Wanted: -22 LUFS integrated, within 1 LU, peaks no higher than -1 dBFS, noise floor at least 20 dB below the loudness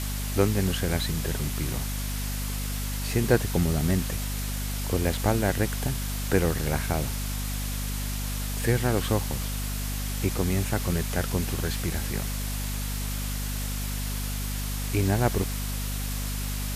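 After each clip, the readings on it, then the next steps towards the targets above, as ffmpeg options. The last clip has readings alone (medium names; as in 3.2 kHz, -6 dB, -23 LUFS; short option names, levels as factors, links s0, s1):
hum 50 Hz; highest harmonic 250 Hz; hum level -29 dBFS; noise floor -30 dBFS; noise floor target -48 dBFS; loudness -28.0 LUFS; peak level -7.5 dBFS; loudness target -22.0 LUFS
-> -af "bandreject=f=50:t=h:w=4,bandreject=f=100:t=h:w=4,bandreject=f=150:t=h:w=4,bandreject=f=200:t=h:w=4,bandreject=f=250:t=h:w=4"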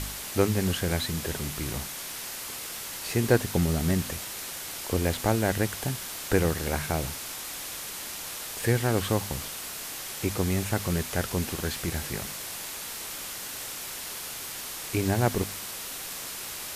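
hum not found; noise floor -38 dBFS; noise floor target -50 dBFS
-> -af "afftdn=nr=12:nf=-38"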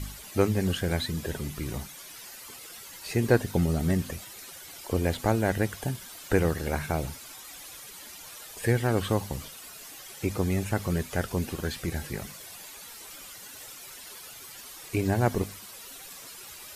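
noise floor -45 dBFS; noise floor target -49 dBFS
-> -af "afftdn=nr=6:nf=-45"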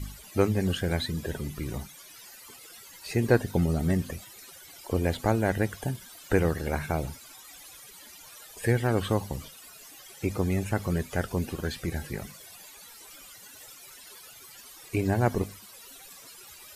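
noise floor -49 dBFS; loudness -29.0 LUFS; peak level -8.5 dBFS; loudness target -22.0 LUFS
-> -af "volume=2.24"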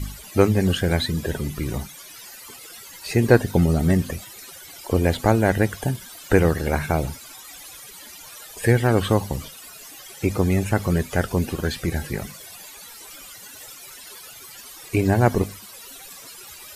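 loudness -22.0 LUFS; peak level -1.5 dBFS; noise floor -42 dBFS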